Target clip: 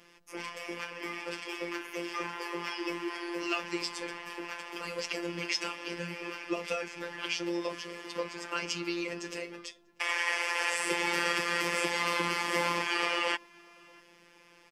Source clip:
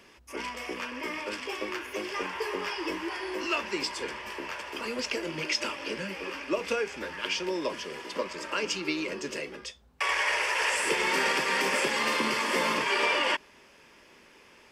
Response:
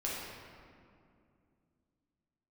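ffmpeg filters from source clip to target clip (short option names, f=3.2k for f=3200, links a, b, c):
-filter_complex "[0:a]afftfilt=real='hypot(re,im)*cos(PI*b)':imag='0':win_size=1024:overlap=0.75,asplit=2[a][b];[b]adelay=641.4,volume=-25dB,highshelf=f=4k:g=-14.4[c];[a][c]amix=inputs=2:normalize=0"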